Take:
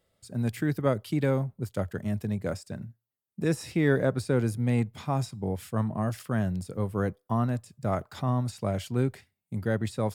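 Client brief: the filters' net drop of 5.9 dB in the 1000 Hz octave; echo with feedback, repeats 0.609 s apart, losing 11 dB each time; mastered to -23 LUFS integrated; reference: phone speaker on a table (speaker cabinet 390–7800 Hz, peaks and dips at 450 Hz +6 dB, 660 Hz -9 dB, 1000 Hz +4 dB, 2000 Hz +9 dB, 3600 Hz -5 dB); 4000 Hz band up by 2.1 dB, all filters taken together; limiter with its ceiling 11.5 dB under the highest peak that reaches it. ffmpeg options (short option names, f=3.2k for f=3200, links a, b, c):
-af "equalizer=f=1k:t=o:g=-8.5,equalizer=f=4k:t=o:g=5.5,alimiter=level_in=0.5dB:limit=-24dB:level=0:latency=1,volume=-0.5dB,highpass=f=390:w=0.5412,highpass=f=390:w=1.3066,equalizer=f=450:t=q:w=4:g=6,equalizer=f=660:t=q:w=4:g=-9,equalizer=f=1k:t=q:w=4:g=4,equalizer=f=2k:t=q:w=4:g=9,equalizer=f=3.6k:t=q:w=4:g=-5,lowpass=f=7.8k:w=0.5412,lowpass=f=7.8k:w=1.3066,aecho=1:1:609|1218|1827:0.282|0.0789|0.0221,volume=17.5dB"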